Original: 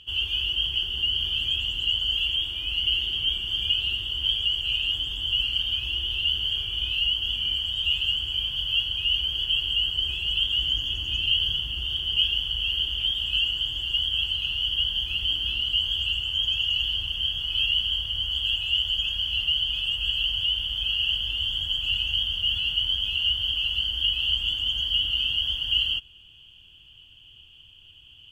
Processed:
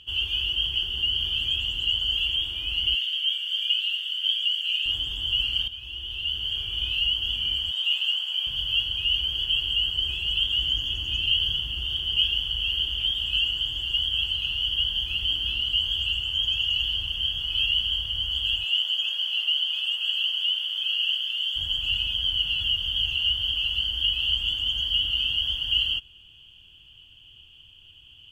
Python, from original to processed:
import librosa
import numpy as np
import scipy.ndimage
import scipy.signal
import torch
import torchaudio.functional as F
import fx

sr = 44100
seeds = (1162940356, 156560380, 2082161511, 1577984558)

y = fx.cheby2_highpass(x, sr, hz=730.0, order=4, stop_db=40, at=(2.95, 4.86))
y = fx.steep_highpass(y, sr, hz=640.0, slope=96, at=(7.71, 8.47))
y = fx.highpass(y, sr, hz=fx.line((18.63, 430.0), (21.55, 1400.0)), slope=12, at=(18.63, 21.55), fade=0.02)
y = fx.edit(y, sr, fx.fade_in_from(start_s=5.68, length_s=1.14, floor_db=-12.5),
    fx.reverse_span(start_s=22.07, length_s=1.05), tone=tone)